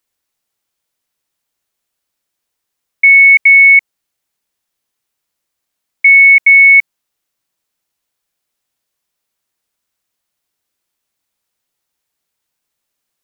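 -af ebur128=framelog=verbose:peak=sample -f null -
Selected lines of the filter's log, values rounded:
Integrated loudness:
  I:          -4.0 LUFS
  Threshold: -14.2 LUFS
Loudness range:
  LRA:         3.0 LU
  Threshold: -28.9 LUFS
  LRA low:   -11.4 LUFS
  LRA high:   -8.4 LUFS
Sample peak:
  Peak:       -1.5 dBFS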